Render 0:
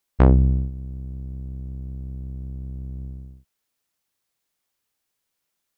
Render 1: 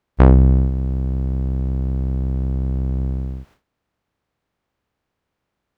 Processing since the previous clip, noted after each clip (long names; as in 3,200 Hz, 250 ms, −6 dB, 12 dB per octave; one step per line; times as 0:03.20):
compressor on every frequency bin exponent 0.6
noise gate with hold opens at −48 dBFS
level +3.5 dB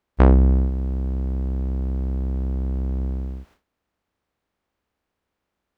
parametric band 130 Hz −9.5 dB 0.39 octaves
level −2 dB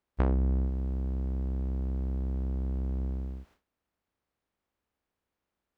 downward compressor, threshold −16 dBFS, peak gain reduction 7 dB
level −7 dB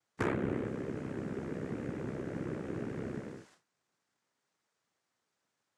cochlear-implant simulation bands 3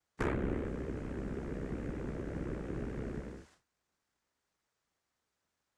sub-octave generator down 2 octaves, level −1 dB
level −2 dB